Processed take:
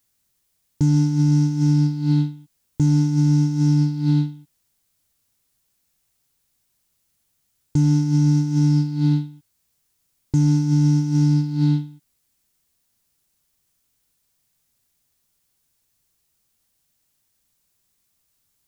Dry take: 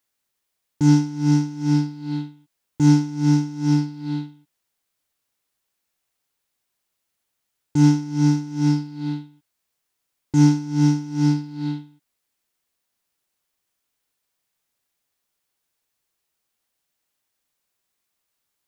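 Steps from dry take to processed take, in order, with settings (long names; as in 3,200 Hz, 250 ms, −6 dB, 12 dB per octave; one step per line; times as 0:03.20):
bass and treble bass +13 dB, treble +7 dB
brickwall limiter −12 dBFS, peak gain reduction 15 dB
level +1.5 dB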